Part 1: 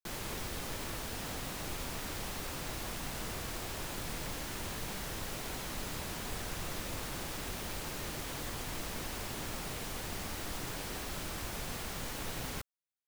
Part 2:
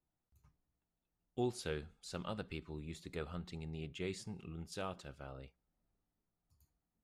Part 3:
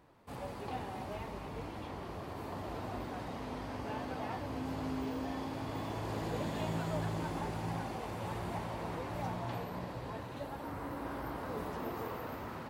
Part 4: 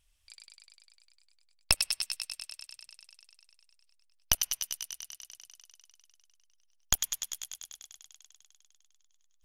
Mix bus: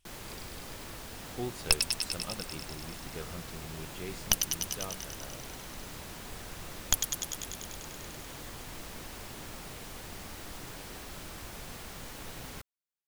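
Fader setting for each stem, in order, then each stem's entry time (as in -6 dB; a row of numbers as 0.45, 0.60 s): -4.0 dB, -0.5 dB, off, 0.0 dB; 0.00 s, 0.00 s, off, 0.00 s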